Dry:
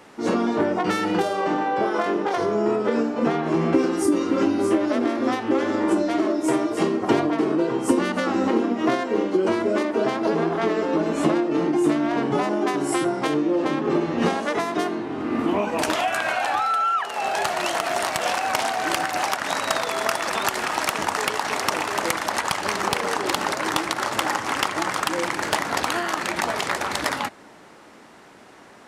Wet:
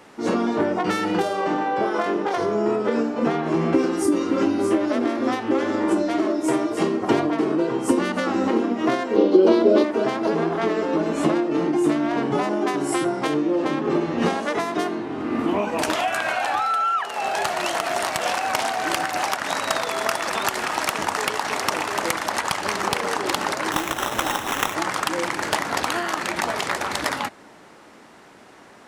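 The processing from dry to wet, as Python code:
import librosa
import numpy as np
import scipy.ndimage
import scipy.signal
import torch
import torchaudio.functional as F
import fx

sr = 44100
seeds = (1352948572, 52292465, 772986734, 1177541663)

y = fx.graphic_eq(x, sr, hz=(125, 250, 500, 2000, 4000, 8000), db=(-11, 7, 8, -6, 10, -9), at=(9.16, 9.84))
y = fx.sample_hold(y, sr, seeds[0], rate_hz=4600.0, jitter_pct=0, at=(23.72, 24.75))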